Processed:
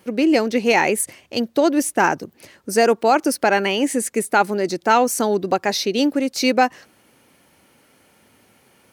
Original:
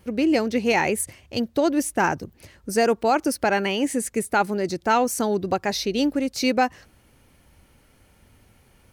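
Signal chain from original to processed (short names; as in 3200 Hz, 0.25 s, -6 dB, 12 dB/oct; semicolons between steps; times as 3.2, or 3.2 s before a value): HPF 210 Hz 12 dB/oct; gain +4.5 dB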